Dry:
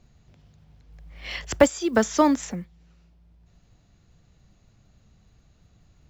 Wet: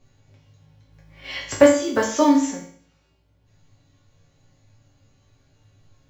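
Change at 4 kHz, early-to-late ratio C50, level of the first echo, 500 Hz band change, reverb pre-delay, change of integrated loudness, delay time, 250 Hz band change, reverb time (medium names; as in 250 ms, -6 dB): +3.0 dB, 5.5 dB, no echo, +4.5 dB, 4 ms, +4.0 dB, no echo, +4.0 dB, 0.50 s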